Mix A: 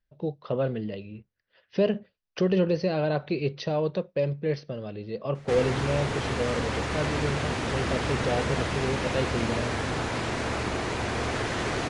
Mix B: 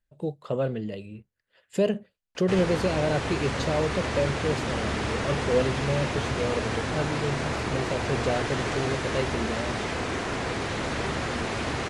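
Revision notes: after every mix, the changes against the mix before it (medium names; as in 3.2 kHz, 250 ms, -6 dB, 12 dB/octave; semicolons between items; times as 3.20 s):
speech: remove brick-wall FIR low-pass 6.2 kHz; background: entry -3.00 s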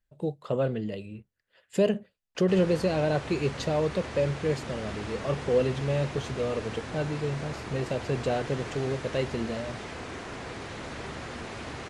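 background -9.0 dB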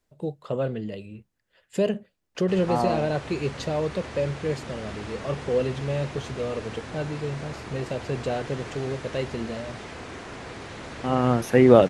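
second voice: unmuted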